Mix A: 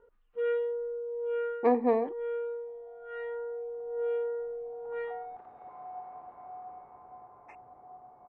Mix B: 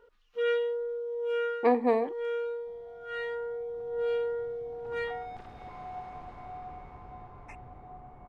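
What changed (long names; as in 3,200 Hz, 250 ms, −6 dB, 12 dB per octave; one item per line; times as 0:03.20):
first sound: remove high-frequency loss of the air 360 metres
second sound: remove resonant band-pass 820 Hz, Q 1.2
master: remove low-pass filter 1,300 Hz 6 dB per octave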